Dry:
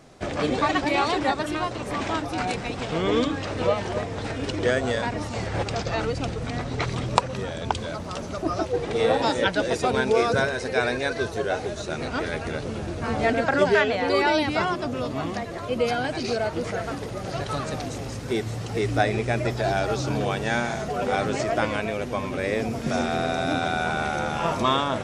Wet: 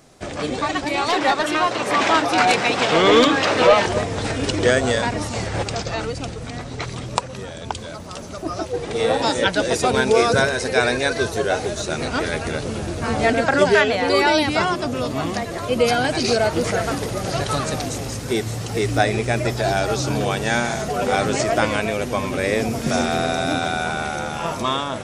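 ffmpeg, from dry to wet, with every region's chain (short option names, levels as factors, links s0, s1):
-filter_complex "[0:a]asettb=1/sr,asplit=3[s0][s1][s2];[s0]atrim=end=1.084[s3];[s1]atrim=start=1.08:end=3.86,asetpts=PTS-STARTPTS,afade=t=in:d=0.004:c=qsin,afade=t=out:st=2.776:d=0.004:c=qsin,highpass=110,highshelf=f=7500:g=-6,asplit=2[s4][s5];[s5]highpass=f=720:p=1,volume=5.62,asoftclip=type=tanh:threshold=0.376[s6];[s4][s6]amix=inputs=2:normalize=0,lowpass=f=3900:p=1,volume=0.501[s7];[s2]atrim=start=3.856[s8];[s3][s7]acrossfade=d=0.004:c1=hsin:c2=qsin[s9];[s9][s8]acrossfade=d=0.004:c1=qsin:c2=hsin,highshelf=f=6300:g=11,dynaudnorm=f=270:g=13:m=3.76,volume=0.891"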